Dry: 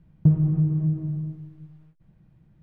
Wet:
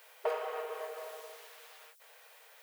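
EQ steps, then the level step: brick-wall FIR high-pass 410 Hz; tilt +4.5 dB/oct; +16.5 dB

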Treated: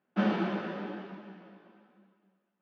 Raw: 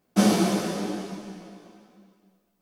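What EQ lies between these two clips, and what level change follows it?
speaker cabinet 290–2500 Hz, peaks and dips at 300 Hz -8 dB, 430 Hz -7 dB, 690 Hz -10 dB, 1100 Hz -6 dB, 2200 Hz -7 dB; notch 500 Hz, Q 12; 0.0 dB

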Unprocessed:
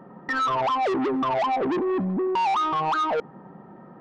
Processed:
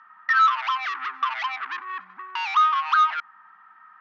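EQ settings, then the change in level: elliptic band-pass 1200–6200 Hz, stop band 40 dB; air absorption 77 m; bell 1600 Hz +4 dB 1 oct; +5.0 dB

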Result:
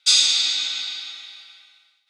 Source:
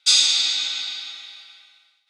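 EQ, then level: bell 750 Hz -2.5 dB 0.77 oct; 0.0 dB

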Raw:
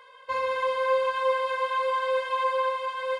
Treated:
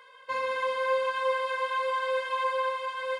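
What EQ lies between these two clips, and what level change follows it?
bell 270 Hz +10.5 dB 1.7 oct; bell 1600 Hz +6 dB 1.5 oct; high shelf 2700 Hz +10 dB; -9.0 dB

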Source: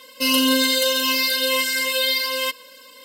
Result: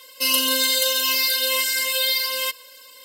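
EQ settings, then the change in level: HPF 430 Hz 12 dB/oct; high shelf 5000 Hz +8.5 dB; -3.5 dB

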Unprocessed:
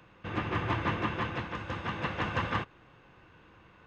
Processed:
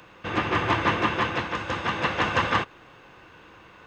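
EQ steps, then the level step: tone controls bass -7 dB, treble +5 dB; +9.0 dB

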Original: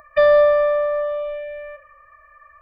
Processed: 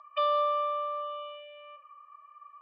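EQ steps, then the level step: double band-pass 1800 Hz, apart 1.4 oct; air absorption 84 m; high shelf 2200 Hz +10 dB; 0.0 dB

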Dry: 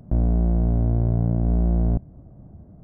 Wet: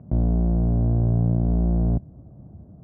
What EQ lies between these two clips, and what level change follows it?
HPF 72 Hz; Bessel low-pass 1300 Hz, order 8; low shelf 110 Hz +4.5 dB; 0.0 dB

